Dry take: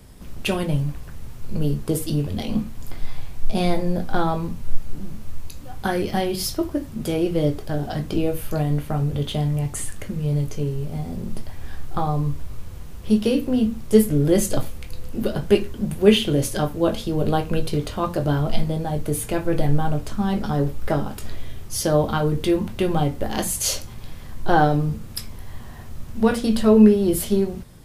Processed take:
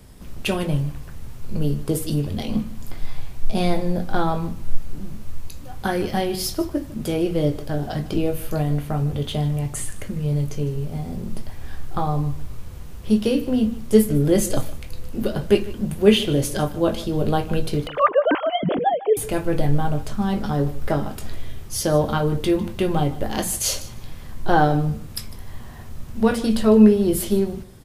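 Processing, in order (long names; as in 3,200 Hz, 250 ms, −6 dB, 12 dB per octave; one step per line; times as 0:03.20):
0:17.87–0:19.17: three sine waves on the formant tracks
repeating echo 152 ms, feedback 16%, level −18 dB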